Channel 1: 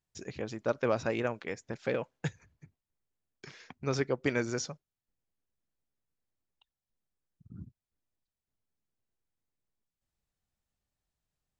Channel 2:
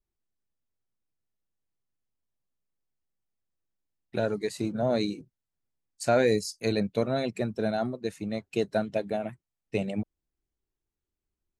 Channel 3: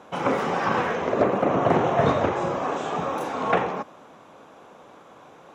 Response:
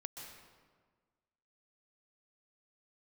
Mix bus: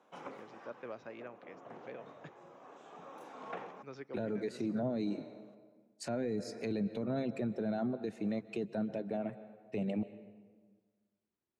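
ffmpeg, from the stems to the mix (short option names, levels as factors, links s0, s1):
-filter_complex "[0:a]lowpass=3800,volume=0.15,asplit=3[s0][s1][s2];[s1]volume=0.168[s3];[1:a]aemphasis=mode=reproduction:type=75fm,volume=0.944,asplit=2[s4][s5];[s5]volume=0.266[s6];[2:a]volume=0.1,asplit=2[s7][s8];[s8]volume=0.0841[s9];[s2]apad=whole_len=244595[s10];[s7][s10]sidechaincompress=threshold=0.00126:ratio=8:attack=16:release=1160[s11];[3:a]atrim=start_sample=2205[s12];[s3][s6][s9]amix=inputs=3:normalize=0[s13];[s13][s12]afir=irnorm=-1:irlink=0[s14];[s0][s4][s11][s14]amix=inputs=4:normalize=0,highpass=180,acrossover=split=310[s15][s16];[s16]acompressor=threshold=0.0158:ratio=4[s17];[s15][s17]amix=inputs=2:normalize=0,alimiter=level_in=1.5:limit=0.0631:level=0:latency=1:release=13,volume=0.668"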